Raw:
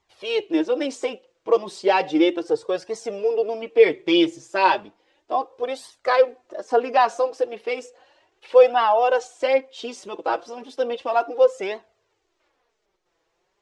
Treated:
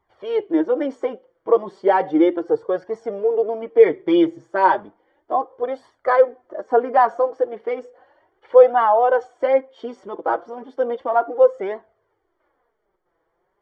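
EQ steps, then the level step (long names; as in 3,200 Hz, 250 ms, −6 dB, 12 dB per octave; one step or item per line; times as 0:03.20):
Savitzky-Golay smoothing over 41 samples
+2.5 dB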